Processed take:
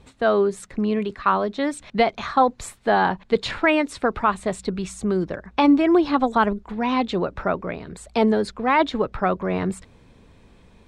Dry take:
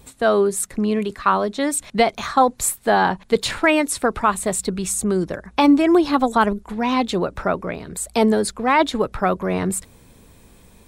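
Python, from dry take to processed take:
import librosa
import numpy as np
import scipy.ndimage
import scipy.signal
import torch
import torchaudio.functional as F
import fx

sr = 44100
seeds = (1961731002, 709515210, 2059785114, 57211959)

y = scipy.signal.sosfilt(scipy.signal.butter(2, 4100.0, 'lowpass', fs=sr, output='sos'), x)
y = y * 10.0 ** (-2.0 / 20.0)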